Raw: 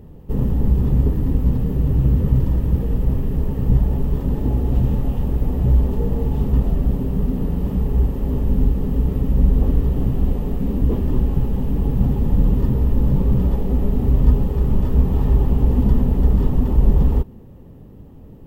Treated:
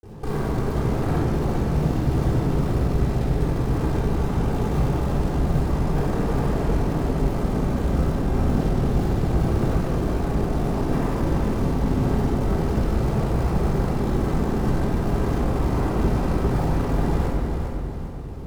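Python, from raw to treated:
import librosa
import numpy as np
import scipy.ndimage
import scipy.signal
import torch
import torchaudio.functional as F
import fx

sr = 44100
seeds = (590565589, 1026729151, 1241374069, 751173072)

p1 = scipy.signal.sosfilt(scipy.signal.ellip(4, 1.0, 40, 1700.0, 'lowpass', fs=sr, output='sos'), x)
p2 = fx.tilt_eq(p1, sr, slope=2.5)
p3 = fx.rider(p2, sr, range_db=10, speed_s=2.0)
p4 = p2 + F.gain(torch.from_numpy(p3), 0.0).numpy()
p5 = 10.0 ** (-18.5 / 20.0) * (np.abs((p4 / 10.0 ** (-18.5 / 20.0) + 3.0) % 4.0 - 2.0) - 1.0)
p6 = fx.quant_float(p5, sr, bits=2)
p7 = fx.granulator(p6, sr, seeds[0], grain_ms=100.0, per_s=20.0, spray_ms=100.0, spread_st=0)
p8 = fx.clip_asym(p7, sr, top_db=-39.5, bottom_db=-21.5)
p9 = p8 + fx.echo_feedback(p8, sr, ms=401, feedback_pct=42, wet_db=-6.0, dry=0)
p10 = fx.room_shoebox(p9, sr, seeds[1], volume_m3=2000.0, walls='mixed', distance_m=3.7)
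y = F.gain(torch.from_numpy(p10), -2.0).numpy()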